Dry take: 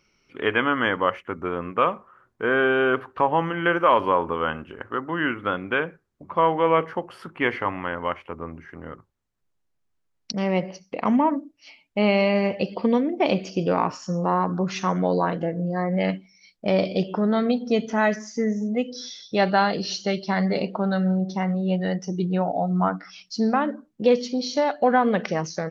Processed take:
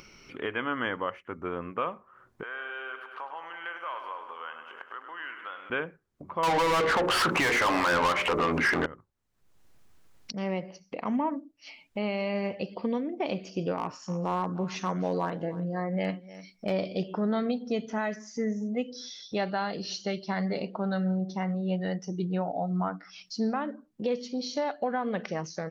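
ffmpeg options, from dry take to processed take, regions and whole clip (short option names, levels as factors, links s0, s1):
-filter_complex "[0:a]asettb=1/sr,asplit=3[s0][s1][s2];[s0]atrim=end=2.434[s3];[s1]atrim=start=2.43:end=5.7,asetpts=PTS-STARTPTS,afade=t=in:d=0.004:c=qsin,afade=t=out:st=3.266:d=0.004:c=qsin,acompressor=threshold=0.0316:ratio=2:attack=3.2:release=140:knee=1:detection=peak,highpass=940,aecho=1:1:101|202|303|404|505|606|707:0.355|0.213|0.128|0.0766|0.046|0.0276|0.0166,atrim=end_sample=144207[s4];[s2]atrim=start=5.696[s5];[s3][s4]acrossfade=d=0.004:c1=hsin:c2=qsin[s6];[s6][s5]acrossfade=d=0.004:c1=qsin:c2=hsin,asettb=1/sr,asplit=3[s7][s8][s9];[s7]atrim=end=6.434[s10];[s8]atrim=start=6.43:end=8.86,asetpts=PTS-STARTPTS,afade=t=in:d=0.004:c=qsin,afade=t=out:st=2.426:d=0.004:c=qsin,bandreject=f=60:t=h:w=6,bandreject=f=120:t=h:w=6,bandreject=f=180:t=h:w=6,bandreject=f=240:t=h:w=6,bandreject=f=300:t=h:w=6,bandreject=f=360:t=h:w=6,bandreject=f=420:t=h:w=6,bandreject=f=480:t=h:w=6,bandreject=f=540:t=h:w=6,bandreject=f=600:t=h:w=6,acompressor=mode=upward:threshold=0.0708:ratio=2.5:attack=3.2:release=140:knee=2.83:detection=peak,asplit=2[s11][s12];[s12]highpass=f=720:p=1,volume=39.8,asoftclip=type=tanh:threshold=0.376[s13];[s11][s13]amix=inputs=2:normalize=0,lowpass=f=5700:p=1,volume=0.501[s14];[s9]atrim=start=8.856[s15];[s10][s14]acrossfade=d=0.004:c1=hsin:c2=qsin[s16];[s16][s15]acrossfade=d=0.004:c1=qsin:c2=hsin,asettb=1/sr,asplit=3[s17][s18][s19];[s17]atrim=end=13.784[s20];[s18]atrim=start=13.78:end=16.72,asetpts=PTS-STARTPTS,afade=t=in:d=0.004:c=qsin,afade=t=out:st=2.936:d=0.004:c=qsin,asoftclip=type=hard:threshold=0.237,aecho=1:1:301:0.112,atrim=end_sample=129654[s21];[s19]atrim=start=16.716[s22];[s20][s21]acrossfade=d=0.004:c1=hsin:c2=qsin[s23];[s23][s22]acrossfade=d=0.004:c1=qsin:c2=hsin,alimiter=limit=0.211:level=0:latency=1:release=363,acompressor=mode=upward:threshold=0.0282:ratio=2.5,volume=0.501"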